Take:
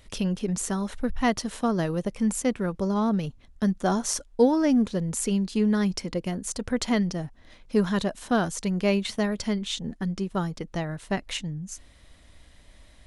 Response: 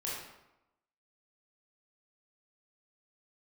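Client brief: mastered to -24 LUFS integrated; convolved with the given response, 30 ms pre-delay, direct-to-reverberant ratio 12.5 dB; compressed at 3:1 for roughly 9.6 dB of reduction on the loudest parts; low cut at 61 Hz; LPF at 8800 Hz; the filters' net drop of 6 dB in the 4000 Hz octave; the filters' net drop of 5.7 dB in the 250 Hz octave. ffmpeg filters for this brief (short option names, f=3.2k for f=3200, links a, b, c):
-filter_complex "[0:a]highpass=61,lowpass=8.8k,equalizer=f=250:t=o:g=-7.5,equalizer=f=4k:t=o:g=-8,acompressor=threshold=-30dB:ratio=3,asplit=2[a][b];[1:a]atrim=start_sample=2205,adelay=30[c];[b][c]afir=irnorm=-1:irlink=0,volume=-15.5dB[d];[a][d]amix=inputs=2:normalize=0,volume=10.5dB"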